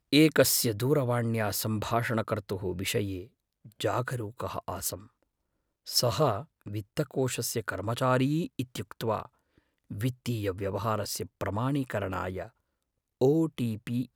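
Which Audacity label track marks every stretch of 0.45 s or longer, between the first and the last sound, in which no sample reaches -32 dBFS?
3.200000	3.800000	silence
4.950000	5.890000	silence
9.250000	9.910000	silence
12.450000	13.210000	silence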